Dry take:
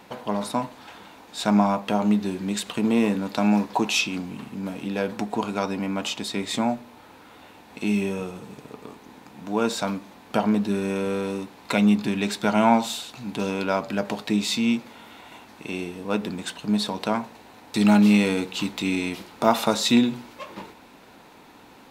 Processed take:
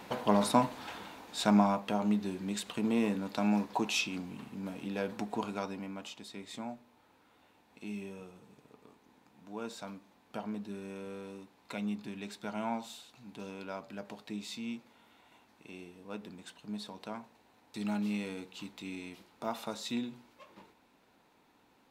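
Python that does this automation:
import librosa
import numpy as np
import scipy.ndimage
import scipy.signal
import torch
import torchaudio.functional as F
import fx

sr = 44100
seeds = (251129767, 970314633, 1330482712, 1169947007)

y = fx.gain(x, sr, db=fx.line((0.91, 0.0), (1.93, -9.0), (5.45, -9.0), (6.12, -17.5)))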